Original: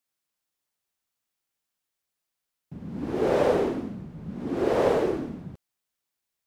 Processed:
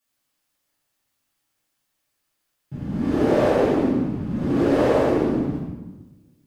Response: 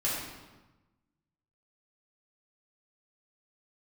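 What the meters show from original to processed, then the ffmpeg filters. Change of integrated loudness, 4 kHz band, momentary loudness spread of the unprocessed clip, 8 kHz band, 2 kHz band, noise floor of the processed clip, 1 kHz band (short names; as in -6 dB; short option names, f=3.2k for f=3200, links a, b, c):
+5.0 dB, +4.0 dB, 16 LU, n/a, +5.0 dB, -76 dBFS, +4.0 dB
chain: -filter_complex "[0:a]acompressor=threshold=-27dB:ratio=3[a];[1:a]atrim=start_sample=2205[b];[a][b]afir=irnorm=-1:irlink=0,volume=2.5dB"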